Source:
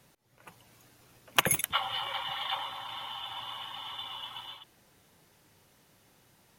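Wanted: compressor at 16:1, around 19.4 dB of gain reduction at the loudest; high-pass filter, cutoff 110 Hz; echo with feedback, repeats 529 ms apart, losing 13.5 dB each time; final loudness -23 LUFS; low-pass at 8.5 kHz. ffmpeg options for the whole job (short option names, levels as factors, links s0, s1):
-af "highpass=110,lowpass=8500,acompressor=threshold=0.00891:ratio=16,aecho=1:1:529|1058:0.211|0.0444,volume=11.2"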